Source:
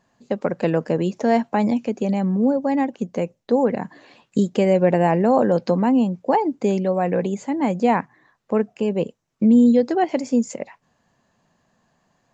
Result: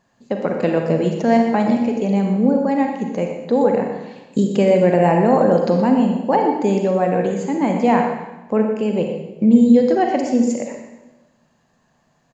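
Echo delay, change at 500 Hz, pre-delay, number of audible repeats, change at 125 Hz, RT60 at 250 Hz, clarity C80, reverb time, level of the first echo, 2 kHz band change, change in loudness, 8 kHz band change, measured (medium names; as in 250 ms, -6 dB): 122 ms, +3.5 dB, 35 ms, 1, +3.0 dB, 1.2 s, 5.5 dB, 1.1 s, -11.0 dB, +3.0 dB, +3.0 dB, no reading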